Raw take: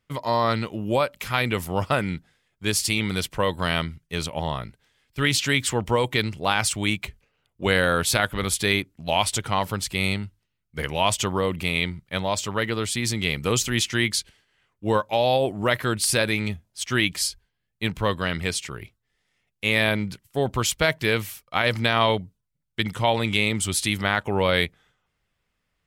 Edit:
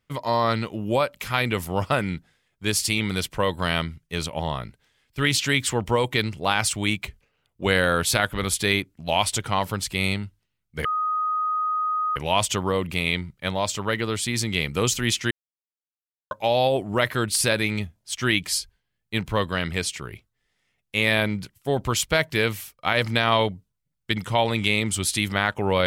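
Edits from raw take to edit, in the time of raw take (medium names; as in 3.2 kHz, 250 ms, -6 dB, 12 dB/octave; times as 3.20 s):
10.85 s: add tone 1.25 kHz -21.5 dBFS 1.31 s
14.00–15.00 s: mute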